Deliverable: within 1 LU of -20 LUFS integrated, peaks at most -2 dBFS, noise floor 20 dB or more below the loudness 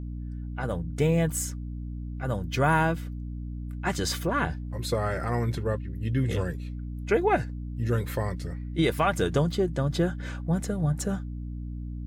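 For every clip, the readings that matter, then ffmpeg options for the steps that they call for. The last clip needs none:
hum 60 Hz; harmonics up to 300 Hz; hum level -32 dBFS; loudness -28.5 LUFS; peak -11.5 dBFS; loudness target -20.0 LUFS
-> -af "bandreject=f=60:t=h:w=6,bandreject=f=120:t=h:w=6,bandreject=f=180:t=h:w=6,bandreject=f=240:t=h:w=6,bandreject=f=300:t=h:w=6"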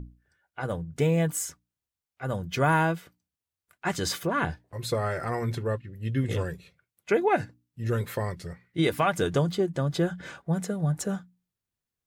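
hum none; loudness -28.5 LUFS; peak -12.0 dBFS; loudness target -20.0 LUFS
-> -af "volume=8.5dB"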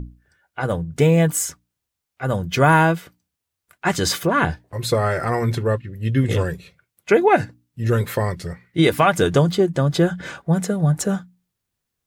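loudness -20.0 LUFS; peak -3.5 dBFS; noise floor -82 dBFS

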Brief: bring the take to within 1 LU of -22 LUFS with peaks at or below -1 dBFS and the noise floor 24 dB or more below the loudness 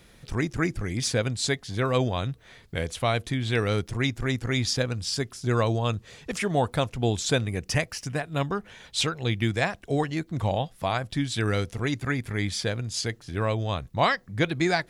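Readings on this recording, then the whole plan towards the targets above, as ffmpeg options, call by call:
loudness -27.5 LUFS; peak -10.5 dBFS; loudness target -22.0 LUFS
-> -af "volume=5.5dB"

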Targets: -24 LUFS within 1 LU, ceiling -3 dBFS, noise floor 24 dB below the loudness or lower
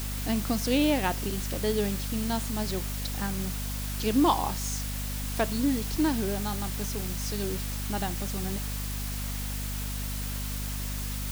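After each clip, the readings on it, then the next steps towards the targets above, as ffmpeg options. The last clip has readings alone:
hum 50 Hz; harmonics up to 250 Hz; hum level -31 dBFS; noise floor -33 dBFS; noise floor target -54 dBFS; loudness -30.0 LUFS; peak -10.5 dBFS; loudness target -24.0 LUFS
-> -af "bandreject=f=50:t=h:w=6,bandreject=f=100:t=h:w=6,bandreject=f=150:t=h:w=6,bandreject=f=200:t=h:w=6,bandreject=f=250:t=h:w=6"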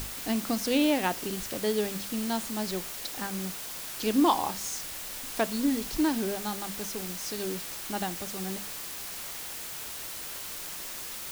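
hum none; noise floor -39 dBFS; noise floor target -55 dBFS
-> -af "afftdn=nr=16:nf=-39"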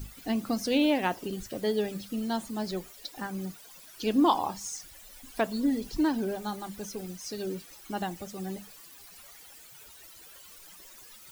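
noise floor -51 dBFS; noise floor target -55 dBFS
-> -af "afftdn=nr=6:nf=-51"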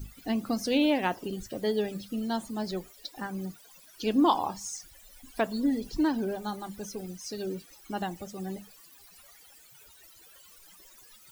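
noise floor -55 dBFS; loudness -31.0 LUFS; peak -12.0 dBFS; loudness target -24.0 LUFS
-> -af "volume=7dB"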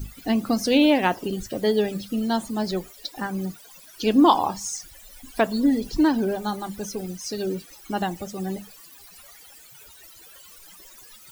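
loudness -24.0 LUFS; peak -5.0 dBFS; noise floor -48 dBFS

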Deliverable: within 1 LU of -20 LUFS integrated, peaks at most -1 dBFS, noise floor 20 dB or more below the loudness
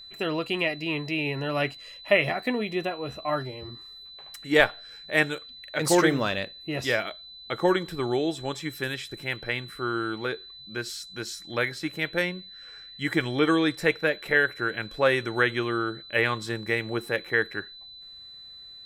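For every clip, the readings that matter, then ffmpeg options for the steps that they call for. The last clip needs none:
steady tone 4000 Hz; tone level -43 dBFS; loudness -27.0 LUFS; peak -4.5 dBFS; loudness target -20.0 LUFS
-> -af "bandreject=f=4k:w=30"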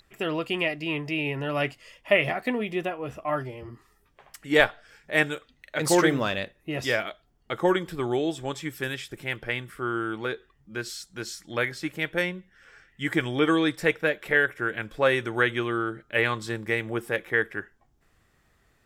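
steady tone none; loudness -27.0 LUFS; peak -4.5 dBFS; loudness target -20.0 LUFS
-> -af "volume=7dB,alimiter=limit=-1dB:level=0:latency=1"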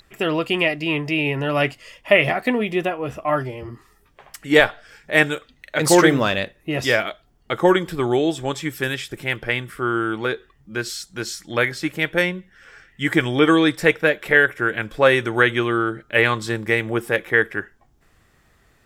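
loudness -20.0 LUFS; peak -1.0 dBFS; noise floor -59 dBFS

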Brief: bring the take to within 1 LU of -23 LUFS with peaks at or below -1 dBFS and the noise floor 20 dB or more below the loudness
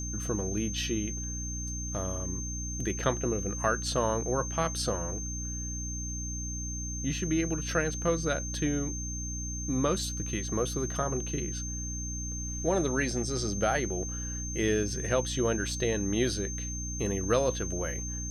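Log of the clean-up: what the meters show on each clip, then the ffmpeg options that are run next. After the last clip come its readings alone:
hum 60 Hz; harmonics up to 300 Hz; hum level -35 dBFS; steady tone 6300 Hz; tone level -37 dBFS; loudness -31.0 LUFS; peak -12.5 dBFS; loudness target -23.0 LUFS
-> -af "bandreject=f=60:t=h:w=4,bandreject=f=120:t=h:w=4,bandreject=f=180:t=h:w=4,bandreject=f=240:t=h:w=4,bandreject=f=300:t=h:w=4"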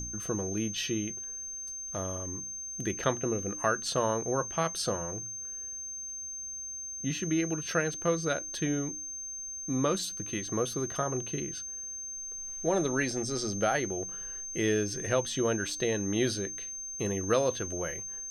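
hum none; steady tone 6300 Hz; tone level -37 dBFS
-> -af "bandreject=f=6.3k:w=30"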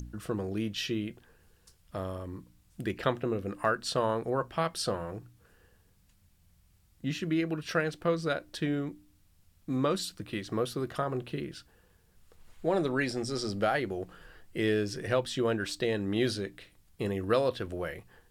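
steady tone none; loudness -32.0 LUFS; peak -13.0 dBFS; loudness target -23.0 LUFS
-> -af "volume=9dB"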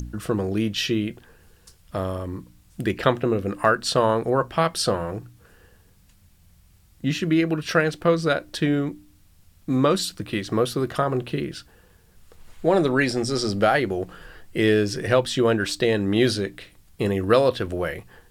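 loudness -23.0 LUFS; peak -4.0 dBFS; noise floor -56 dBFS

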